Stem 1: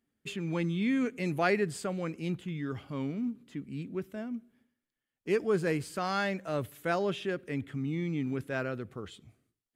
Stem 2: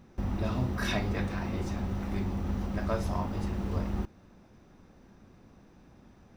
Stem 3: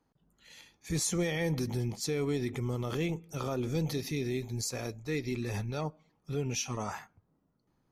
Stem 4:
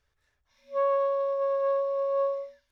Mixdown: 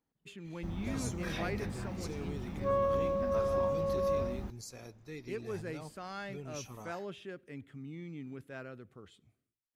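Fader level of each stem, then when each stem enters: -11.5, -9.0, -12.0, -5.0 dB; 0.00, 0.45, 0.00, 1.90 s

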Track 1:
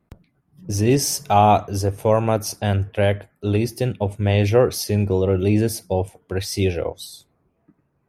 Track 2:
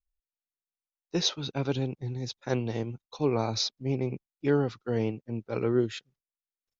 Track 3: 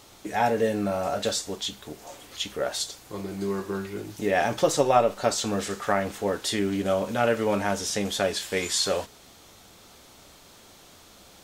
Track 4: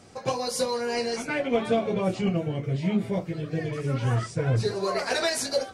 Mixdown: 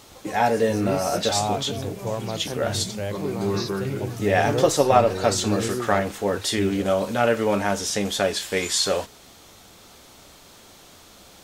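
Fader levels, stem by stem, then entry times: -11.5, -4.5, +3.0, -12.0 dB; 0.00, 0.00, 0.00, 0.00 s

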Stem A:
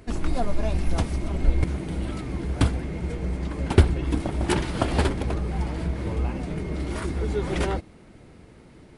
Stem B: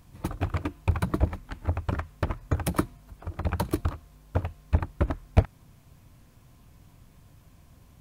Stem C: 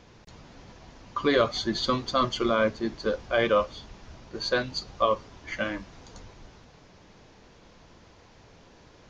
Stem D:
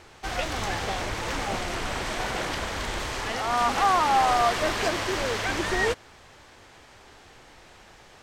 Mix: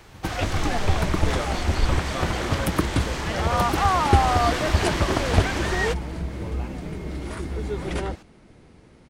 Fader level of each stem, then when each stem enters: -2.5, +1.5, -9.5, 0.0 dB; 0.35, 0.00, 0.00, 0.00 s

